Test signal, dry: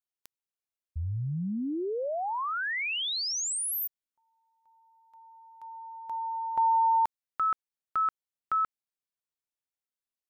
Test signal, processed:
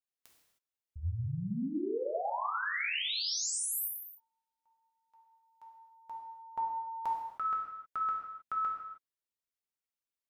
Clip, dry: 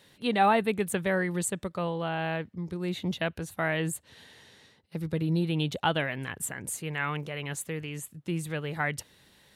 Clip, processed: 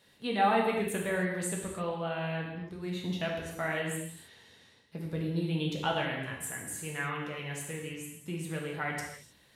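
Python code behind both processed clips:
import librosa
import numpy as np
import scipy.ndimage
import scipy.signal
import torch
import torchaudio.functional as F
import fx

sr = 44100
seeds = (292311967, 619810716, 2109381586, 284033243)

y = fx.rev_gated(x, sr, seeds[0], gate_ms=340, shape='falling', drr_db=-2.0)
y = y * librosa.db_to_amplitude(-7.0)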